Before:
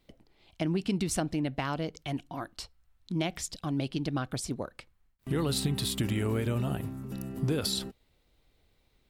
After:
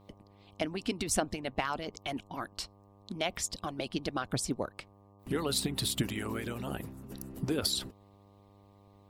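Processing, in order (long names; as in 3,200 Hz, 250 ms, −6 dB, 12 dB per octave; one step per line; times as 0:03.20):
harmonic and percussive parts rebalanced harmonic −17 dB
hum with harmonics 100 Hz, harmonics 12, −62 dBFS −4 dB per octave
level +2.5 dB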